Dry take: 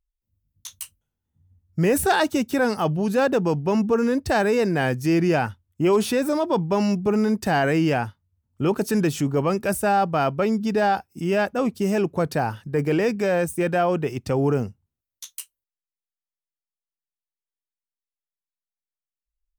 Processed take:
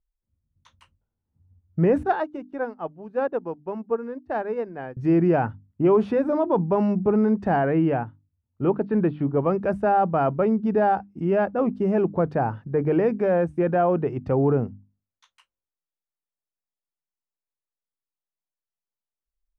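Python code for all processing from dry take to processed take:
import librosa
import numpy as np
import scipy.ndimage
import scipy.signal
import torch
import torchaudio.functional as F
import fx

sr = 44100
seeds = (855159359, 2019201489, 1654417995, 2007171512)

y = fx.chain(x, sr, fx.low_shelf(hz=180.0, db=-10.5),
    fx.upward_expand(threshold_db=-35.0, expansion=2.5), at=(2.03, 4.97))
y = fx.chain(y, sr, fx.steep_lowpass(hz=4400.0, slope=48),
    fx.upward_expand(threshold_db=-29.0, expansion=1.5), at=(7.56, 9.46))
y = scipy.signal.sosfilt(scipy.signal.butter(2, 1200.0, 'lowpass', fs=sr, output='sos'), y)
y = fx.hum_notches(y, sr, base_hz=50, count=6)
y = y * 10.0 ** (1.0 / 20.0)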